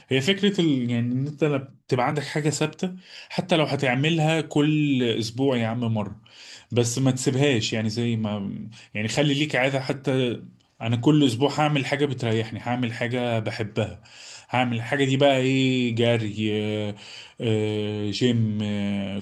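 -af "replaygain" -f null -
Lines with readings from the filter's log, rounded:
track_gain = +3.9 dB
track_peak = 0.392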